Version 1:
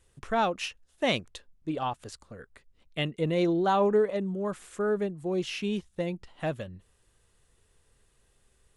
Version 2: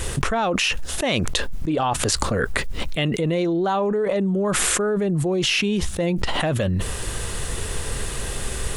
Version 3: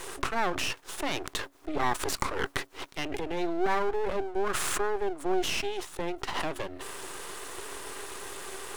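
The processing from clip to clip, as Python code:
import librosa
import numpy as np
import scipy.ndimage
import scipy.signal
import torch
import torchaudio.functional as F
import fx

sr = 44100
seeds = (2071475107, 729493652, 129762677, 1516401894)

y1 = fx.env_flatten(x, sr, amount_pct=100)
y1 = y1 * librosa.db_to_amplitude(-1.0)
y2 = scipy.signal.sosfilt(scipy.signal.cheby1(6, 9, 270.0, 'highpass', fs=sr, output='sos'), y1)
y2 = np.maximum(y2, 0.0)
y2 = y2 * librosa.db_to_amplitude(2.0)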